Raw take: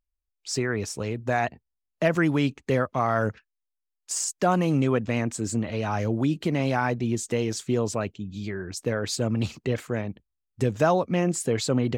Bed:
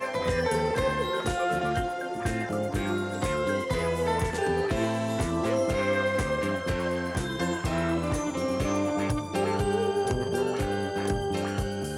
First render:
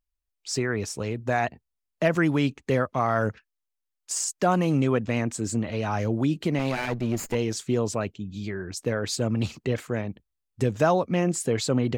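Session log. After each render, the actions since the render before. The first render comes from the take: 6.59–7.35 s: comb filter that takes the minimum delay 0.43 ms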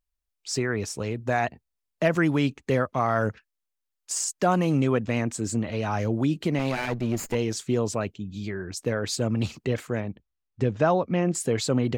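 10.00–11.35 s: distance through air 150 m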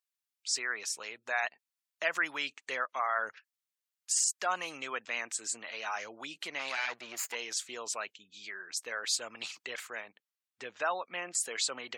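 high-pass 1.3 kHz 12 dB/octave; spectral gate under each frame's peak -30 dB strong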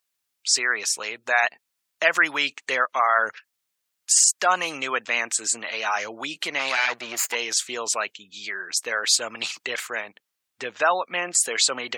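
trim +11.5 dB

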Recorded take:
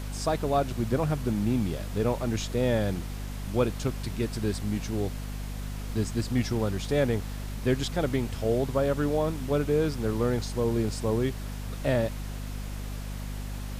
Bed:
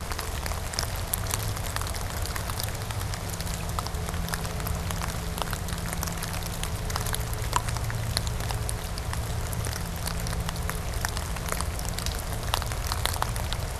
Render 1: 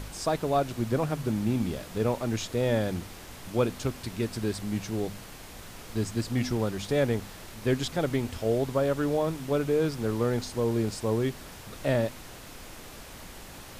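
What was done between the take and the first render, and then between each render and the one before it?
de-hum 50 Hz, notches 5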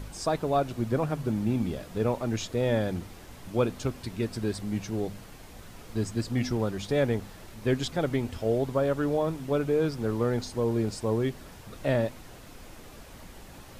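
noise reduction 6 dB, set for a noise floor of -45 dBFS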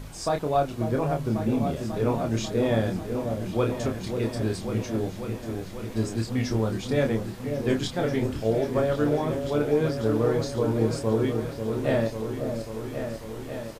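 doubling 27 ms -4.5 dB; delay with an opening low-pass 543 ms, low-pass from 750 Hz, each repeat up 2 oct, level -6 dB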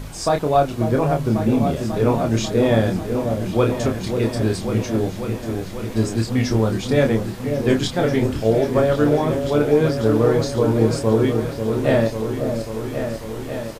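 trim +7 dB

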